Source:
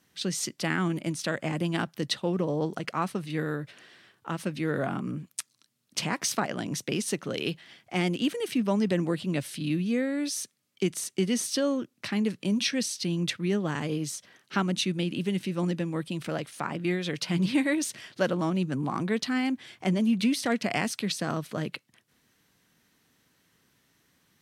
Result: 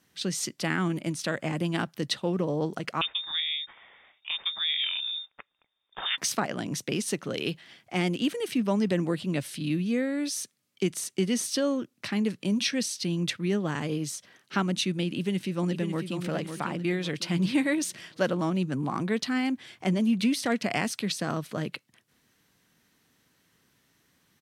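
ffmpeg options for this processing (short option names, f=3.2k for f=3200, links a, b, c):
-filter_complex "[0:a]asettb=1/sr,asplit=3[a][b][c];[a]atrim=end=3.014[d];[b]atrim=start=3.01:end=6.18,asetpts=PTS-STARTPTS,afade=t=in:d=0.004:c=qsin,afade=t=out:st=3.166:d=0.004:c=qsin,lowpass=f=3.2k:t=q:w=0.5098,lowpass=f=3.2k:t=q:w=0.6013,lowpass=f=3.2k:t=q:w=0.9,lowpass=f=3.2k:t=q:w=2.563,afreqshift=-3800[e];[c]atrim=start=6.176[f];[d][e]acrossfade=d=0.004:c1=hsin:c2=qsin[g];[g][f]acrossfade=d=0.004:c1=qsin:c2=hsin,asplit=2[h][i];[i]afade=t=in:st=15.17:d=0.01,afade=t=out:st=16.17:d=0.01,aecho=0:1:550|1100|1650|2200|2750:0.421697|0.168679|0.0674714|0.0269886|0.0107954[j];[h][j]amix=inputs=2:normalize=0"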